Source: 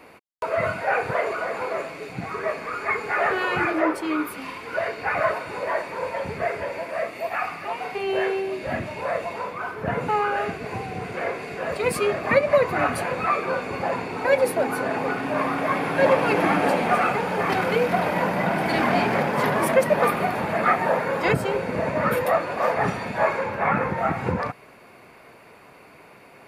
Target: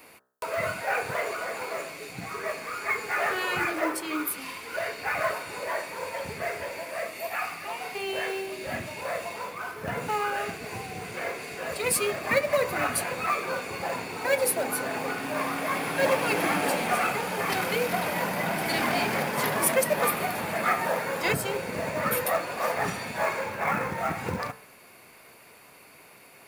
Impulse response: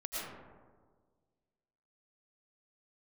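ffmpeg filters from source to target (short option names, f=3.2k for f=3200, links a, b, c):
-af "crystalizer=i=4:c=0,bandreject=f=63.89:t=h:w=4,bandreject=f=127.78:t=h:w=4,bandreject=f=191.67:t=h:w=4,bandreject=f=255.56:t=h:w=4,bandreject=f=319.45:t=h:w=4,bandreject=f=383.34:t=h:w=4,bandreject=f=447.23:t=h:w=4,bandreject=f=511.12:t=h:w=4,bandreject=f=575.01:t=h:w=4,bandreject=f=638.9:t=h:w=4,bandreject=f=702.79:t=h:w=4,bandreject=f=766.68:t=h:w=4,bandreject=f=830.57:t=h:w=4,bandreject=f=894.46:t=h:w=4,bandreject=f=958.35:t=h:w=4,bandreject=f=1.02224k:t=h:w=4,bandreject=f=1.08613k:t=h:w=4,bandreject=f=1.15002k:t=h:w=4,bandreject=f=1.21391k:t=h:w=4,bandreject=f=1.2778k:t=h:w=4,bandreject=f=1.34169k:t=h:w=4,bandreject=f=1.40558k:t=h:w=4,bandreject=f=1.46947k:t=h:w=4,bandreject=f=1.53336k:t=h:w=4,bandreject=f=1.59725k:t=h:w=4,bandreject=f=1.66114k:t=h:w=4,bandreject=f=1.72503k:t=h:w=4,bandreject=f=1.78892k:t=h:w=4,bandreject=f=1.85281k:t=h:w=4,bandreject=f=1.9167k:t=h:w=4,acrusher=bits=5:mode=log:mix=0:aa=0.000001,volume=-6.5dB"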